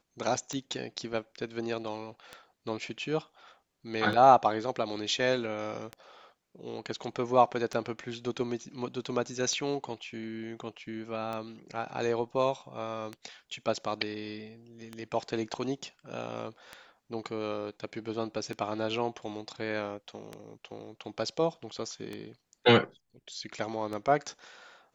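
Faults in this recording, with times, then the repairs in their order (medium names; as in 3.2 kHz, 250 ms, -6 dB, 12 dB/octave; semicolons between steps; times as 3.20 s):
tick 33 1/3 rpm -23 dBFS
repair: de-click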